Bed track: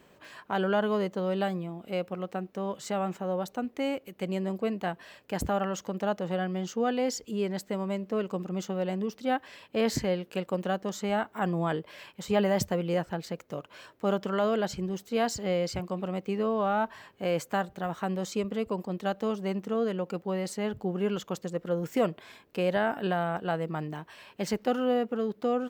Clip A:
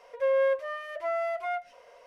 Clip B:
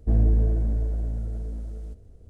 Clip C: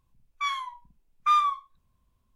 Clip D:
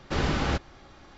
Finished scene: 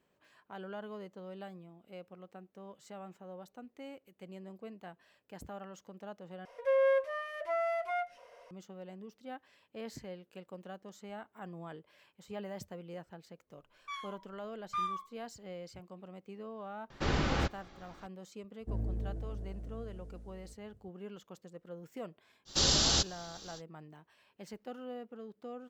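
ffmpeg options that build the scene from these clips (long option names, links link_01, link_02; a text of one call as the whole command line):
ffmpeg -i bed.wav -i cue0.wav -i cue1.wav -i cue2.wav -i cue3.wav -filter_complex "[4:a]asplit=2[link_01][link_02];[0:a]volume=-17dB[link_03];[2:a]highpass=63[link_04];[link_02]aexciter=amount=10:drive=6.3:freq=3400[link_05];[link_03]asplit=2[link_06][link_07];[link_06]atrim=end=6.454[link_08];[1:a]atrim=end=2.06,asetpts=PTS-STARTPTS,volume=-3dB[link_09];[link_07]atrim=start=8.506[link_10];[3:a]atrim=end=2.35,asetpts=PTS-STARTPTS,volume=-13.5dB,afade=type=in:duration=0.004:curve=hsin,afade=type=out:start_time=2.346:duration=0.004:curve=hsin,adelay=13470[link_11];[link_01]atrim=end=1.17,asetpts=PTS-STARTPTS,volume=-4.5dB,afade=type=in:duration=0.004:curve=hsin,afade=type=out:start_time=1.166:duration=0.004:curve=hsin,adelay=16900[link_12];[link_04]atrim=end=2.29,asetpts=PTS-STARTPTS,volume=-13dB,afade=type=in:duration=0.004:curve=hsin,afade=type=out:start_time=2.286:duration=0.004:curve=hsin,adelay=820260S[link_13];[link_05]atrim=end=1.17,asetpts=PTS-STARTPTS,volume=-7dB,afade=type=in:duration=0.05,afade=type=out:start_time=1.12:duration=0.05,adelay=22450[link_14];[link_08][link_09]acrossfade=duration=0.004:curve1=hsin:curve2=hsin[link_15];[link_15][link_10]acrossfade=duration=0.004:curve1=hsin:curve2=hsin[link_16];[link_16][link_11][link_12][link_13][link_14]amix=inputs=5:normalize=0" out.wav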